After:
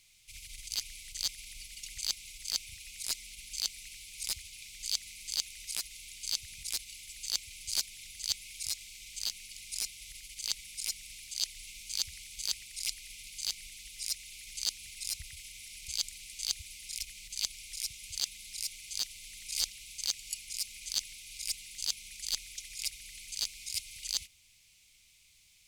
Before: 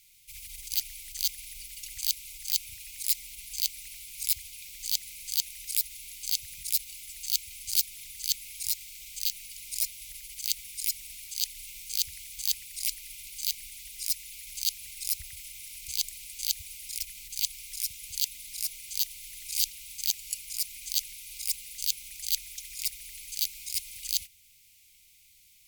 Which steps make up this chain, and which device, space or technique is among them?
compact cassette (saturation -10 dBFS, distortion -15 dB; low-pass 8.5 kHz 12 dB/octave; wow and flutter 9.1 cents; white noise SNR 40 dB)

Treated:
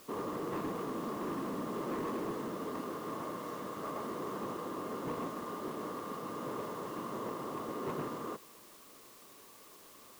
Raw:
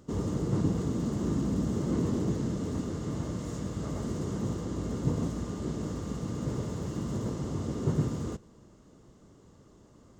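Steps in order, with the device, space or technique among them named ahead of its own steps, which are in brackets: drive-through speaker (band-pass 430–2800 Hz; peaking EQ 1.1 kHz +10 dB 0.27 oct; hard clipper -34 dBFS, distortion -16 dB; white noise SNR 18 dB); trim +1.5 dB

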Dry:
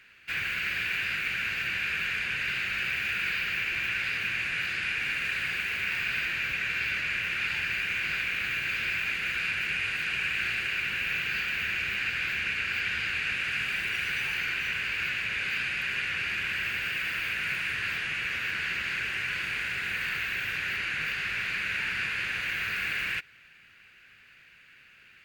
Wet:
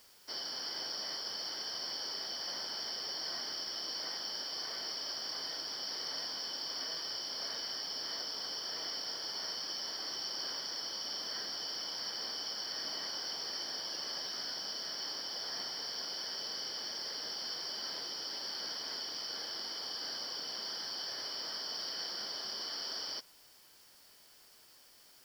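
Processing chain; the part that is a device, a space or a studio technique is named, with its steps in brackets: split-band scrambled radio (four frequency bands reordered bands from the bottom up 3412; band-pass 360–3300 Hz; white noise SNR 22 dB); trim -1.5 dB

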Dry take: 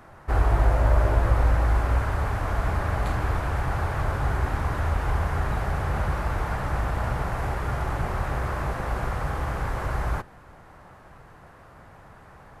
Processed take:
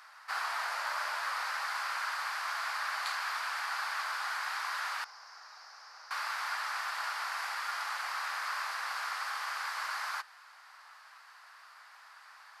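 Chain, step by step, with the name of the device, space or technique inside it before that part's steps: 5.04–6.11 s: FFT filter 140 Hz 0 dB, 200 Hz -20 dB, 470 Hz -11 dB, 3.4 kHz -22 dB, 5.4 kHz -5 dB, 8.1 kHz -23 dB; headphones lying on a table (high-pass 1.1 kHz 24 dB/octave; peaking EQ 4.7 kHz +12 dB 0.56 oct)

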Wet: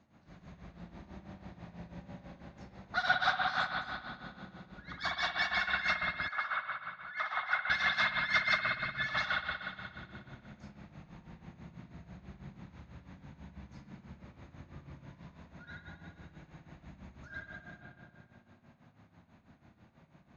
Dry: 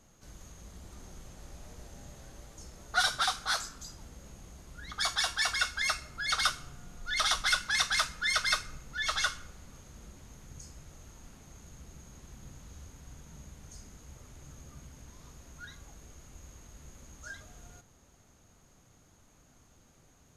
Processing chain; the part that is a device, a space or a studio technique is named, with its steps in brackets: combo amplifier with spring reverb and tremolo (spring tank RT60 2.3 s, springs 58 ms, chirp 50 ms, DRR -5 dB; tremolo 6.1 Hz, depth 74%; cabinet simulation 92–3900 Hz, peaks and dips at 190 Hz +5 dB, 450 Hz -9 dB, 1.3 kHz -4 dB, 3.1 kHz -8 dB); 6.28–7.70 s: three-band isolator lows -18 dB, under 600 Hz, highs -17 dB, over 2.1 kHz

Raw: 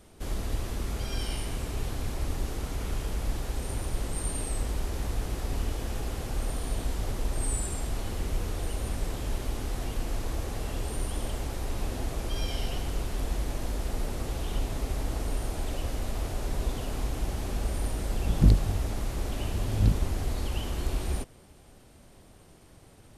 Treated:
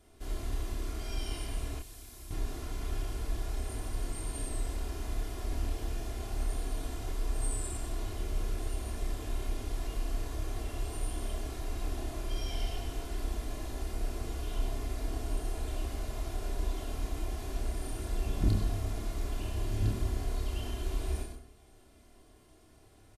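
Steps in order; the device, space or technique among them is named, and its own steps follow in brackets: microphone above a desk (comb 2.9 ms, depth 58%; reverberation RT60 0.45 s, pre-delay 83 ms, DRR 6 dB); 1.79–2.31 s: pre-emphasis filter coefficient 0.8; doubling 29 ms -4 dB; trim -9 dB

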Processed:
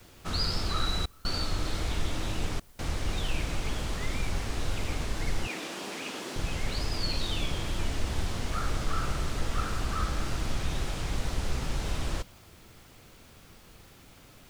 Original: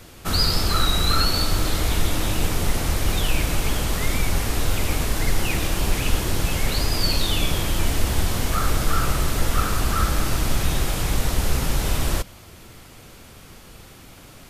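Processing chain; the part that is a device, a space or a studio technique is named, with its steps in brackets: worn cassette (low-pass 7.1 kHz 12 dB/octave; wow and flutter; level dips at 1.06/2.60 s, 187 ms -28 dB; white noise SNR 33 dB); 5.47–6.36 s: high-pass 220 Hz 24 dB/octave; trim -9 dB

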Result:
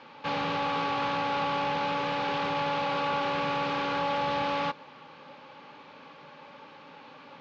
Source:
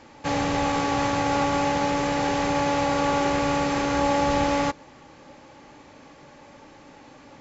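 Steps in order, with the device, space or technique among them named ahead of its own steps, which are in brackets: overdrive pedal into a guitar cabinet (overdrive pedal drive 19 dB, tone 4.7 kHz, clips at -11 dBFS; cabinet simulation 110–4100 Hz, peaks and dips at 160 Hz +6 dB, 330 Hz -8 dB, 690 Hz -9 dB, 1.9 kHz -8 dB); trim -8 dB

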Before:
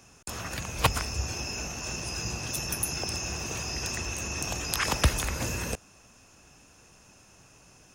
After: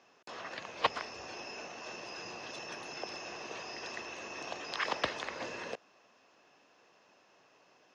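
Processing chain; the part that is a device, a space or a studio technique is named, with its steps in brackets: phone earpiece (cabinet simulation 460–4000 Hz, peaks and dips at 840 Hz -3 dB, 1.4 kHz -6 dB, 2.5 kHz -7 dB, 3.5 kHz -3 dB); trim -1 dB

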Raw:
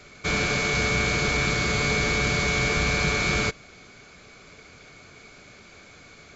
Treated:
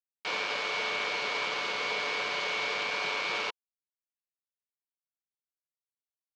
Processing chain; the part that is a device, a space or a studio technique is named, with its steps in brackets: hand-held game console (bit crusher 4-bit; cabinet simulation 470–4900 Hz, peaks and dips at 510 Hz +6 dB, 970 Hz +9 dB, 2.9 kHz +6 dB); trim -9 dB

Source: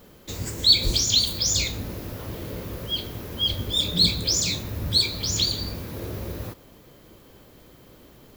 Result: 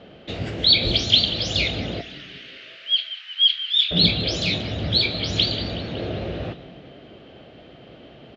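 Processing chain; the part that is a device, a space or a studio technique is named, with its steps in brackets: 2.01–3.91 s: inverse Chebyshev high-pass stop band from 490 Hz, stop band 60 dB; frequency-shifting delay pedal into a guitar cabinet (frequency-shifting echo 185 ms, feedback 59%, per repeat -120 Hz, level -15.5 dB; cabinet simulation 75–3700 Hz, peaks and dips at 87 Hz -5 dB, 680 Hz +9 dB, 1 kHz -9 dB, 2.9 kHz +7 dB); trim +5.5 dB

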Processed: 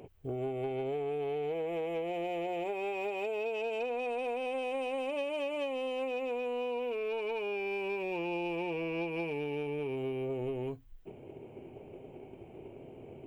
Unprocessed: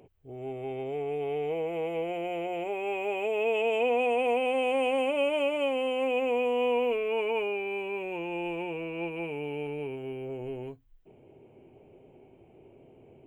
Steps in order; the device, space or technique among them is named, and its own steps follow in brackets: drum-bus smash (transient shaper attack +7 dB, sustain +2 dB; compression 10:1, threshold -36 dBFS, peak gain reduction 14.5 dB; saturation -31 dBFS, distortion -24 dB); trim +5 dB

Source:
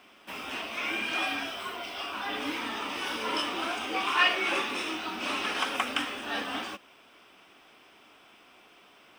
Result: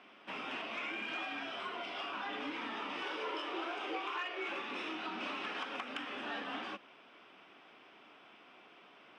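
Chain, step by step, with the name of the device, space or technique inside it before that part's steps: AM radio (band-pass 110–3300 Hz; compression 8:1, threshold -35 dBFS, peak gain reduction 16 dB; saturation -26.5 dBFS, distortion -26 dB); high-pass 100 Hz; 3.03–4.48 s: resonant low shelf 290 Hz -6.5 dB, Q 3; trim -1.5 dB

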